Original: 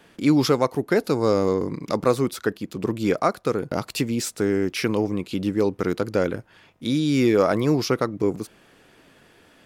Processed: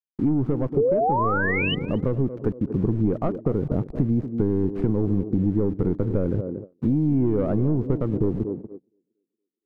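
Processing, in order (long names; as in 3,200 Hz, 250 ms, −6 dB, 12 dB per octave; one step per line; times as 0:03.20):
running median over 15 samples
head-to-tape spacing loss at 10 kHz 44 dB
soft clipping −17 dBFS, distortion −15 dB
sound drawn into the spectrogram rise, 0:00.77–0:01.75, 410–3,100 Hz −13 dBFS
centre clipping without the shift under −40.5 dBFS
speech leveller within 4 dB 2 s
spectral tilt −4.5 dB per octave
feedback echo with a band-pass in the loop 233 ms, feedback 48%, band-pass 360 Hz, level −11 dB
noise gate −29 dBFS, range −29 dB
downward compressor 4 to 1, threshold −18 dBFS, peak gain reduction 11 dB
level −1.5 dB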